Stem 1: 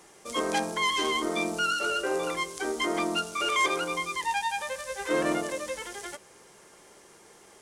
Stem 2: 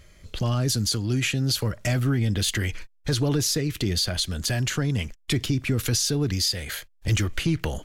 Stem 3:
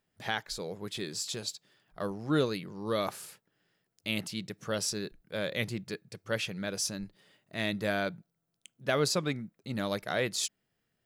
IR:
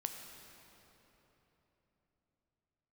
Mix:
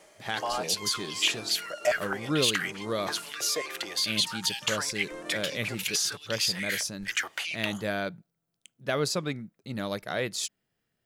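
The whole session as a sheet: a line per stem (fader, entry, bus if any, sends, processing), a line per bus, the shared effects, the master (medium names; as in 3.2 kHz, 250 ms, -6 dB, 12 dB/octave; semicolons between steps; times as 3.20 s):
-4.0 dB, 0.00 s, no send, auto duck -11 dB, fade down 0.35 s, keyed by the third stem
-3.5 dB, 0.00 s, no send, step-sequenced high-pass 4.7 Hz 620–3200 Hz
0.0 dB, 0.00 s, no send, none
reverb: none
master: none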